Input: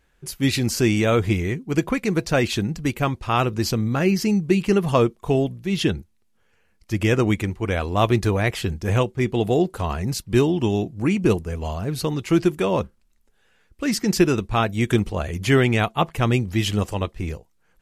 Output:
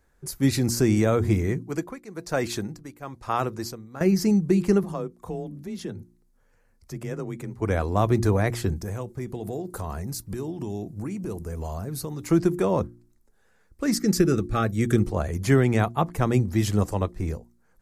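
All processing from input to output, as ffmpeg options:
-filter_complex "[0:a]asettb=1/sr,asplit=3[a][b][c];[a]atrim=end=1.594[d];[b]atrim=start=1.59:end=4.01,asetpts=PTS-STARTPTS,afade=t=in:d=0.004:c=qsin,afade=t=out:st=2.416:d=0.004:c=qsin,lowshelf=f=280:g=-9,tremolo=f=1.1:d=0.83[e];[c]atrim=start=4.006[f];[d][e]acrossfade=d=0.004:c1=hsin:c2=qsin[g];[g][f]acrossfade=d=0.004:c1=qsin:c2=hsin,asettb=1/sr,asplit=3[h][i][j];[h]atrim=end=4.834[k];[i]atrim=start=4.83:end=7.62,asetpts=PTS-STARTPTS,afade=t=in:d=0.004:c=qsin,afade=t=out:st=2.786:d=0.004:c=qsin,acompressor=threshold=-38dB:ratio=2:attack=3.2:release=140:knee=1:detection=peak,afreqshift=26[l];[j]atrim=start=7.616[m];[k][l]acrossfade=d=0.004:c1=hsin:c2=qsin[n];[n][m]acrossfade=d=0.004:c1=qsin:c2=hsin,asettb=1/sr,asplit=3[o][p][q];[o]atrim=end=8.764[r];[p]atrim=start=8.76:end=12.28,asetpts=PTS-STARTPTS,afade=t=in:d=0.004:c=qsin,afade=t=out:st=3.516:d=0.004:c=qsin,highshelf=f=8.6k:g=10.5,acompressor=threshold=-28dB:ratio=6:attack=3.2:release=140:knee=1:detection=peak[s];[q]atrim=start=12.276[t];[r][s]acrossfade=d=0.004:c1=hsin:c2=qsin[u];[u][t]acrossfade=d=0.004:c1=qsin:c2=hsin,asettb=1/sr,asplit=3[v][w][x];[v]atrim=end=13.984[y];[w]atrim=start=13.98:end=15.04,asetpts=PTS-STARTPTS,afade=t=in:d=0.004:c=qsin,afade=t=out:st=1.056:d=0.004:c=qsin,asuperstop=centerf=970:order=20:qfactor=4.2,equalizer=f=730:w=5.8:g=-12.5[z];[x]atrim=start=15.036[aa];[y][z]acrossfade=d=0.004:c1=hsin:c2=qsin[ab];[ab][aa]acrossfade=d=0.004:c1=qsin:c2=hsin,equalizer=f=2.9k:w=1.6:g=-13.5,bandreject=f=58.97:t=h:w=4,bandreject=f=117.94:t=h:w=4,bandreject=f=176.91:t=h:w=4,bandreject=f=235.88:t=h:w=4,bandreject=f=294.85:t=h:w=4,bandreject=f=353.82:t=h:w=4,acrossover=split=250[ac][ad];[ad]acompressor=threshold=-20dB:ratio=3[ae];[ac][ae]amix=inputs=2:normalize=0"

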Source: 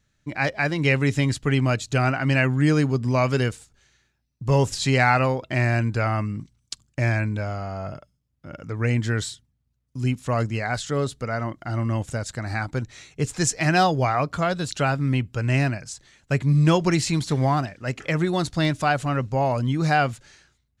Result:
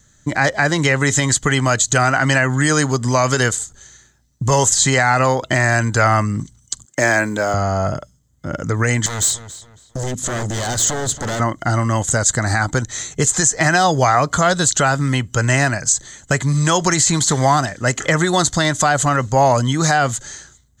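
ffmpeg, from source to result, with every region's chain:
-filter_complex "[0:a]asettb=1/sr,asplit=3[a][b][c];[a]atrim=end=6.854[d];[b]atrim=start=6.85:end=7.54,asetpts=PTS-STARTPTS,afade=t=in:d=0.004:c=qsin,afade=t=out:st=0.686:d=0.004:c=qsin,highpass=310,acrusher=bits=9:mode=log:mix=0:aa=0.000001[e];[c]atrim=start=7.536[f];[d][e]acrossfade=d=0.004:c1=hsin:c2=qsin[g];[g][f]acrossfade=d=0.004:c1=qsin:c2=hsin,asettb=1/sr,asplit=3[h][i][j];[h]atrim=end=9.064[k];[i]atrim=start=9.06:end=11.4,asetpts=PTS-STARTPTS,afade=t=in:d=0.004:c=qsin,afade=t=out:st=2.336:d=0.004:c=qsin,acompressor=threshold=-28dB:ratio=5:attack=3.2:release=140:knee=1:detection=peak,aeval=exprs='0.0266*(abs(mod(val(0)/0.0266+3,4)-2)-1)':c=same,asplit=2[l][m];[m]adelay=277,lowpass=f=4.5k:p=1,volume=-14dB,asplit=2[n][o];[o]adelay=277,lowpass=f=4.5k:p=1,volume=0.32,asplit=2[p][q];[q]adelay=277,lowpass=f=4.5k:p=1,volume=0.32[r];[l][n][p][r]amix=inputs=4:normalize=0,atrim=end_sample=103194[s];[j]atrim=start=11.396[t];[k][s]acrossfade=d=0.004:c1=hsin:c2=qsin[u];[u][t]acrossfade=d=0.004:c1=qsin:c2=hsin,acrossover=split=660|2000[v][w][x];[v]acompressor=threshold=-32dB:ratio=4[y];[w]acompressor=threshold=-26dB:ratio=4[z];[x]acompressor=threshold=-32dB:ratio=4[aa];[y][z][aa]amix=inputs=3:normalize=0,superequalizer=12b=0.355:15b=3.55,alimiter=level_in=17.5dB:limit=-1dB:release=50:level=0:latency=1,volume=-3.5dB"

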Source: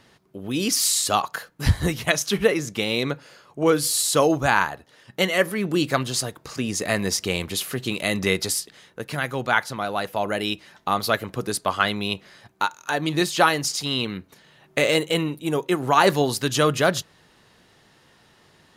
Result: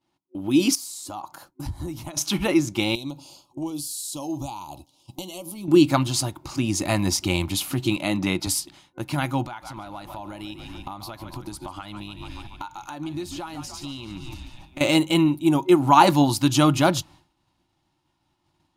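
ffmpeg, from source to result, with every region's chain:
-filter_complex "[0:a]asettb=1/sr,asplit=3[a][b][c];[a]atrim=end=0.754[d];[b]atrim=start=0.75:end=2.17,asetpts=PTS-STARTPTS,afade=t=in:d=0.004:c=qsin,afade=t=out:st=1.416:d=0.004:c=qsin,acompressor=threshold=-33dB:ratio=5:attack=3.2:release=140:knee=1:detection=peak,equalizer=f=2.6k:w=0.84:g=-8[e];[c]atrim=start=2.166[f];[d][e]acrossfade=d=0.004:c1=hsin:c2=qsin[g];[g][f]acrossfade=d=0.004:c1=qsin:c2=hsin,asettb=1/sr,asplit=3[h][i][j];[h]atrim=end=2.954[k];[i]atrim=start=2.95:end=5.68,asetpts=PTS-STARTPTS,afade=t=in:d=0.004:c=qsin,afade=t=out:st=2.726:d=0.004:c=qsin,highshelf=f=3.3k:g=10.5,acompressor=threshold=-32dB:ratio=5:attack=3.2:release=140:knee=1:detection=peak,asuperstop=centerf=1700:order=4:qfactor=0.85[l];[j]atrim=start=5.676[m];[k][l]acrossfade=d=0.004:c1=hsin:c2=qsin[n];[n][m]acrossfade=d=0.004:c1=qsin:c2=hsin,asettb=1/sr,asplit=3[o][p][q];[o]atrim=end=7.964[r];[p]atrim=start=7.96:end=8.47,asetpts=PTS-STARTPTS,afade=t=in:d=0.004:c=qsin,afade=t=out:st=0.506:d=0.004:c=qsin,highpass=140,highshelf=f=4k:g=-8.5[s];[q]atrim=start=8.466[t];[r][s]acrossfade=d=0.004:c1=hsin:c2=qsin[u];[u][t]acrossfade=d=0.004:c1=qsin:c2=hsin,asettb=1/sr,asplit=3[v][w][x];[v]atrim=end=9.454[y];[w]atrim=start=9.45:end=14.81,asetpts=PTS-STARTPTS,afade=t=in:d=0.004:c=qsin,afade=t=out:st=5.356:d=0.004:c=qsin,asplit=7[z][aa][ab][ac][ad][ae][af];[aa]adelay=143,afreqshift=-65,volume=-14dB[ag];[ab]adelay=286,afreqshift=-130,volume=-18.7dB[ah];[ac]adelay=429,afreqshift=-195,volume=-23.5dB[ai];[ad]adelay=572,afreqshift=-260,volume=-28.2dB[aj];[ae]adelay=715,afreqshift=-325,volume=-32.9dB[ak];[af]adelay=858,afreqshift=-390,volume=-37.7dB[al];[z][ag][ah][ai][aj][ak][al]amix=inputs=7:normalize=0,atrim=end_sample=236376,acompressor=threshold=-35dB:ratio=6:attack=3.2:release=140:knee=1:detection=peak[am];[x]atrim=start=14.806[an];[y][am]acrossfade=d=0.004:c1=hsin:c2=qsin[ao];[ao][an]acrossfade=d=0.004:c1=qsin:c2=hsin,asubboost=boost=2.5:cutoff=160,agate=range=-33dB:threshold=-43dB:ratio=3:detection=peak,superequalizer=6b=3.16:7b=0.282:9b=2.24:11b=0.447"

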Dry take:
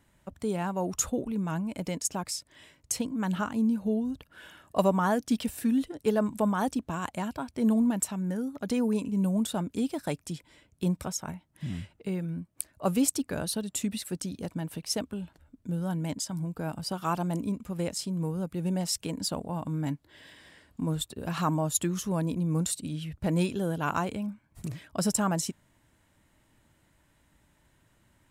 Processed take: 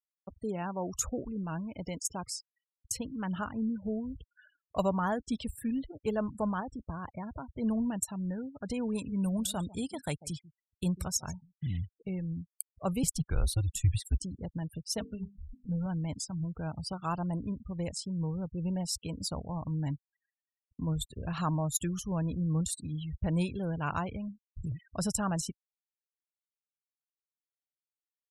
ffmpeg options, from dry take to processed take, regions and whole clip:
-filter_complex "[0:a]asettb=1/sr,asplit=3[a][b][c];[a]atrim=end=6.604[d];[b]atrim=start=6.6:end=7.5,asetpts=PTS-STARTPTS,afade=t=in:d=0.004:c=qsin,afade=t=out:st=0.896:d=0.004:c=qsin,equalizer=f=6.8k:t=o:w=2.8:g=-7.5,acompressor=threshold=-30dB:ratio=3:attack=3.2:release=140:knee=1:detection=peak[e];[c]atrim=start=7.496[f];[d][e]acrossfade=d=0.004:c1=hsin:c2=qsin[g];[g][f]acrossfade=d=0.004:c1=qsin:c2=hsin,asettb=1/sr,asplit=3[h][i][j];[h]atrim=end=8.954[k];[i]atrim=start=8.95:end=11.78,asetpts=PTS-STARTPTS,afade=t=in:d=0.004:c=qsin,afade=t=out:st=2.826:d=0.004:c=qsin,highshelf=f=2.3k:g=7.5,aecho=1:1:145:0.126,atrim=end_sample=124803[l];[j]atrim=start=11.776[m];[k][l]acrossfade=d=0.004:c1=hsin:c2=qsin[n];[n][m]acrossfade=d=0.004:c1=qsin:c2=hsin,asettb=1/sr,asplit=3[o][p][q];[o]atrim=end=13.034[r];[p]atrim=start=13.03:end=14.2,asetpts=PTS-STARTPTS,afade=t=in:d=0.004:c=qsin,afade=t=out:st=1.166:d=0.004:c=qsin,acrusher=bits=9:mode=log:mix=0:aa=0.000001,afreqshift=-110[s];[q]atrim=start=14.196[t];[r][s]acrossfade=d=0.004:c1=hsin:c2=qsin[u];[u][t]acrossfade=d=0.004:c1=qsin:c2=hsin,asettb=1/sr,asplit=3[v][w][x];[v]atrim=end=14.924[y];[w]atrim=start=14.92:end=15.86,asetpts=PTS-STARTPTS,afade=t=in:d=0.004:c=qsin,afade=t=out:st=0.936:d=0.004:c=qsin,bandreject=f=50:t=h:w=6,bandreject=f=100:t=h:w=6,bandreject=f=150:t=h:w=6,bandreject=f=200:t=h:w=6,bandreject=f=250:t=h:w=6,bandreject=f=300:t=h:w=6,bandreject=f=350:t=h:w=6,bandreject=f=400:t=h:w=6,bandreject=f=450:t=h:w=6,aecho=1:1:4.4:0.58,atrim=end_sample=41454,acompressor=mode=upward:threshold=-42dB:ratio=2.5:attack=3.2:release=140:knee=2.83:detection=peak[z];[x]atrim=start=15.856[aa];[y][z]acrossfade=d=0.004:c1=hsin:c2=qsin[ab];[ab][aa]acrossfade=d=0.004:c1=qsin:c2=hsin,afftfilt=real='re*gte(hypot(re,im),0.0112)':imag='im*gte(hypot(re,im),0.0112)':win_size=1024:overlap=0.75,asubboost=boost=6:cutoff=100,agate=range=-33dB:threshold=-47dB:ratio=3:detection=peak,volume=-4dB"

